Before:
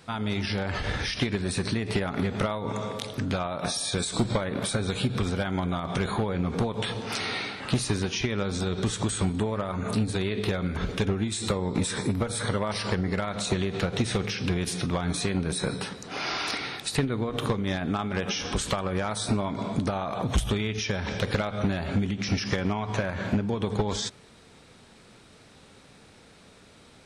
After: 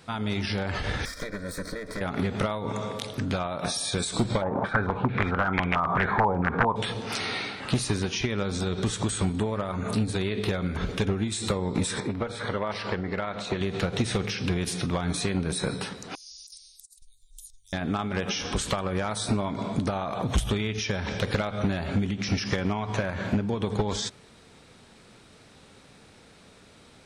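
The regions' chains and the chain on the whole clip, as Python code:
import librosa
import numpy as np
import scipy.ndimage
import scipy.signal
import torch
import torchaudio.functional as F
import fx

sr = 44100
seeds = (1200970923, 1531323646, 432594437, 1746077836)

y = fx.chain(x, sr, fx.lower_of_two(delay_ms=2.1),
    fx.high_shelf(hz=6600.0, db=-4.5),
    fx.fixed_phaser(hz=570.0, stages=8), at=(1.05, 2.01))
y = fx.chain(y, sr, fx.peak_eq(hz=870.0, db=4.0, octaves=0.5),
    fx.overflow_wrap(gain_db=17.0),
    fx.filter_held_lowpass(hz=4.5, low_hz=880.0, high_hz=2400.0), at=(4.42, 6.76))
y = fx.chain(y, sr, fx.lowpass(hz=6200.0, slope=12),
    fx.bass_treble(bass_db=-6, treble_db=-8), at=(12.0, 13.61))
y = fx.chain(y, sr, fx.cheby2_bandstop(low_hz=130.0, high_hz=1700.0, order=4, stop_db=70),
    fx.over_compress(threshold_db=-47.0, ratio=-0.5), at=(16.15, 17.73))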